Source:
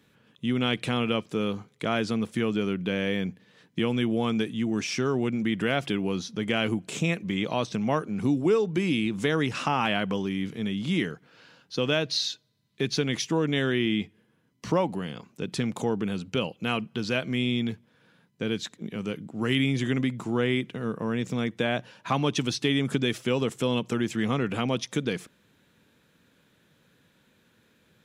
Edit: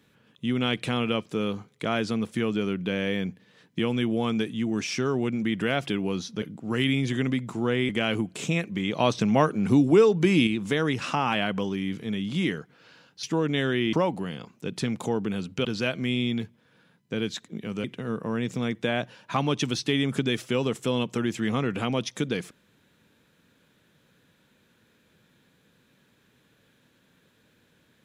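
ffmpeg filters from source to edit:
-filter_complex "[0:a]asplit=9[a][b][c][d][e][f][g][h][i];[a]atrim=end=6.422[j];[b]atrim=start=19.128:end=20.602[k];[c]atrim=start=6.418:end=7.532[l];[d]atrim=start=7.528:end=9.002,asetpts=PTS-STARTPTS,volume=5dB[m];[e]atrim=start=8.998:end=11.762[n];[f]atrim=start=13.218:end=13.922[o];[g]atrim=start=14.688:end=16.412[p];[h]atrim=start=16.938:end=19.132[q];[i]atrim=start=20.598[r];[j][k]acrossfade=d=0.004:c1=hsin:c2=hsin[s];[s][l]acrossfade=d=0.004:c1=hsin:c2=hsin[t];[t][m]acrossfade=d=0.004:c1=hsin:c2=hsin[u];[u][n]acrossfade=d=0.004:c1=hsin:c2=hsin[v];[v][o]acrossfade=d=0.004:c1=hsin:c2=hsin[w];[w][p]acrossfade=d=0.004:c1=hsin:c2=hsin[x];[x][q]acrossfade=d=0.004:c1=hsin:c2=hsin[y];[y][r]acrossfade=d=0.004:c1=hsin:c2=hsin"

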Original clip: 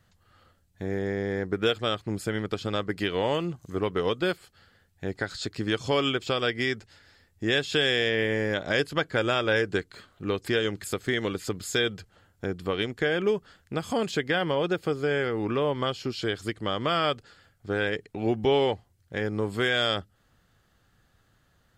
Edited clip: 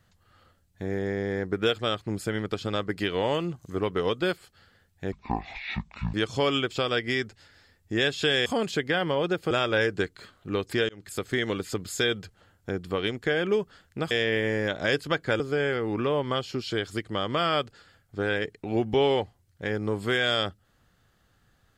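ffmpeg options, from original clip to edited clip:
-filter_complex "[0:a]asplit=8[a][b][c][d][e][f][g][h];[a]atrim=end=5.124[i];[b]atrim=start=5.12:end=5.65,asetpts=PTS-STARTPTS,asetrate=22932,aresample=44100,atrim=end_sample=44948,asetpts=PTS-STARTPTS[j];[c]atrim=start=5.646:end=7.972[k];[d]atrim=start=13.858:end=14.912[l];[e]atrim=start=9.258:end=10.64,asetpts=PTS-STARTPTS,afade=t=out:st=1.378:d=0.004:c=hsin[m];[f]atrim=start=10.64:end=13.862,asetpts=PTS-STARTPTS,afade=t=in:d=0.35[n];[g]atrim=start=7.968:end=9.262[o];[h]atrim=start=14.908[p];[i][j]acrossfade=d=0.004:c1=hsin:c2=hsin[q];[q][k]acrossfade=d=0.004:c1=hsin:c2=hsin[r];[r][l]acrossfade=d=0.004:c1=hsin:c2=hsin[s];[m][n]concat=n=2:v=0:a=1[t];[s][t]acrossfade=d=0.004:c1=hsin:c2=hsin[u];[u][o]acrossfade=d=0.004:c1=hsin:c2=hsin[v];[v][p]acrossfade=d=0.004:c1=hsin:c2=hsin"

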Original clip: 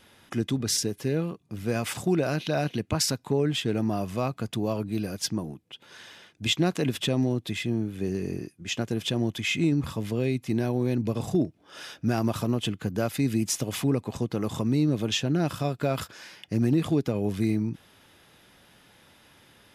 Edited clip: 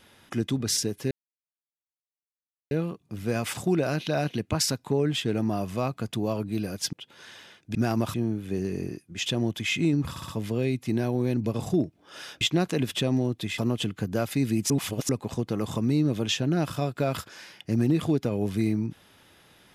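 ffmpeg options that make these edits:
-filter_complex "[0:a]asplit=13[a][b][c][d][e][f][g][h][i][j][k][l][m];[a]atrim=end=1.11,asetpts=PTS-STARTPTS,afade=t=out:st=1.106:d=0.004:c=hsin,apad=pad_dur=1.6[n];[b]atrim=start=1.11:end=5.332,asetpts=PTS-STARTPTS,afade=t=in:d=0.004:c=hsin[o];[c]atrim=start=5.648:end=6.472[p];[d]atrim=start=12.018:end=12.412[q];[e]atrim=start=7.638:end=8.762[r];[f]atrim=start=9.048:end=9.952[s];[g]atrim=start=9.888:end=9.952[t];[h]atrim=start=9.888:end=9.952[u];[i]atrim=start=9.888:end=12.022[v];[j]atrim=start=6.468:end=7.642[w];[k]atrim=start=12.408:end=13.532[x];[l]atrim=start=13.528:end=13.922,asetpts=PTS-STARTPTS,areverse[y];[m]atrim=start=13.918[z];[n][o]concat=n=2:v=0:a=1[aa];[aa][p]acrossfade=d=0.004:c1=hsin:c2=hsin[ab];[ab][q]acrossfade=d=0.004:c1=hsin:c2=hsin[ac];[ac][r]acrossfade=d=0.004:c1=hsin:c2=hsin[ad];[ad][s]acrossfade=d=0.004:c1=hsin:c2=hsin[ae];[ae][t]acrossfade=d=0.004:c1=hsin:c2=hsin[af];[af][u]acrossfade=d=0.004:c1=hsin:c2=hsin[ag];[ag][v]acrossfade=d=0.004:c1=hsin:c2=hsin[ah];[ah][w]acrossfade=d=0.004:c1=hsin:c2=hsin[ai];[ai][x]acrossfade=d=0.004:c1=hsin:c2=hsin[aj];[aj][y]acrossfade=d=0.004:c1=hsin:c2=hsin[ak];[ak][z]acrossfade=d=0.004:c1=hsin:c2=hsin"

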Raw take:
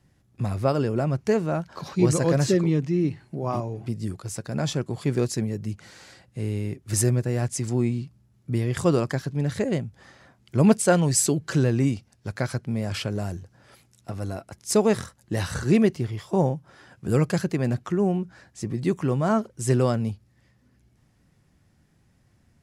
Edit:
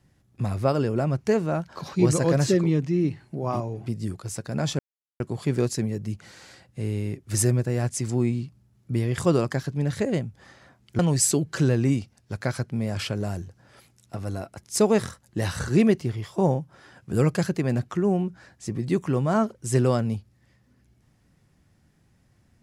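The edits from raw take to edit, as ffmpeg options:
-filter_complex "[0:a]asplit=3[a][b][c];[a]atrim=end=4.79,asetpts=PTS-STARTPTS,afade=t=out:st=4.786:d=0.004:c=hsin,apad=pad_dur=0.41[d];[b]atrim=start=4.79:end=10.582,asetpts=PTS-STARTPTS,afade=t=in:d=0.004:c=hsin[e];[c]atrim=start=10.938[f];[d][e]concat=n=2:v=0:a=1[g];[g][f]acrossfade=d=0.004:c1=hsin:c2=hsin"

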